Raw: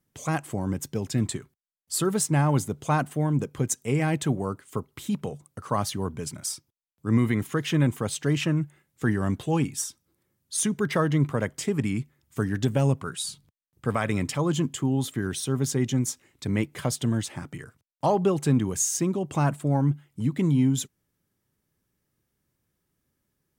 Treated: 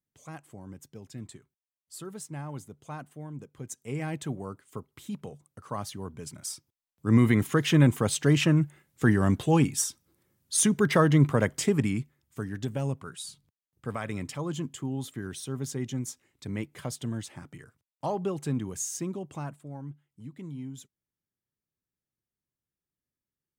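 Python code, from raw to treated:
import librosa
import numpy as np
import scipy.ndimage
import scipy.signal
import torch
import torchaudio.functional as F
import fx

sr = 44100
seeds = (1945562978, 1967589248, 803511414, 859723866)

y = fx.gain(x, sr, db=fx.line((3.53, -16.0), (3.97, -8.5), (6.1, -8.5), (7.28, 2.5), (11.67, 2.5), (12.41, -8.0), (19.18, -8.0), (19.65, -17.5)))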